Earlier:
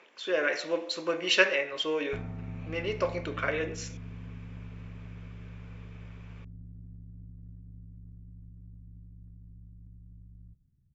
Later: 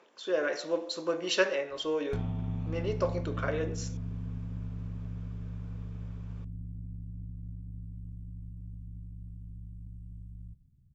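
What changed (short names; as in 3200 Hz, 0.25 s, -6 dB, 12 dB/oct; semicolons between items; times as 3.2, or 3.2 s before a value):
background: remove rippled Chebyshev low-pass 1900 Hz, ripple 6 dB; master: add bell 2300 Hz -11.5 dB 1 oct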